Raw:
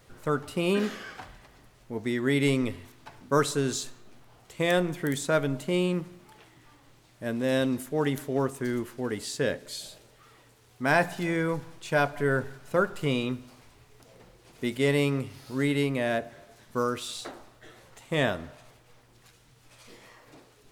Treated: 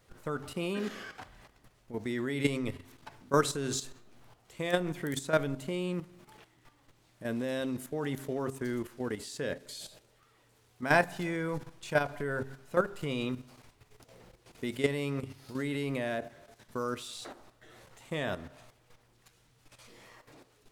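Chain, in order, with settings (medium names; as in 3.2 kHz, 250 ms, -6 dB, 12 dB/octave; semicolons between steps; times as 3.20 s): de-hum 133.6 Hz, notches 3; level held to a coarse grid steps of 11 dB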